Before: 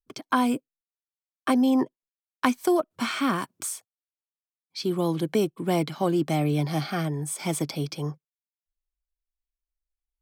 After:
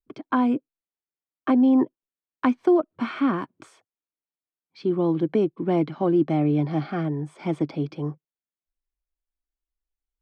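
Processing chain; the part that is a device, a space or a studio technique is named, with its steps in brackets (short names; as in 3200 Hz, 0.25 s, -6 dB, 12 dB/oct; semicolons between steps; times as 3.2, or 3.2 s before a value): phone in a pocket (LPF 3100 Hz 12 dB/oct; bell 310 Hz +6 dB 0.66 oct; high shelf 2400 Hz -9 dB)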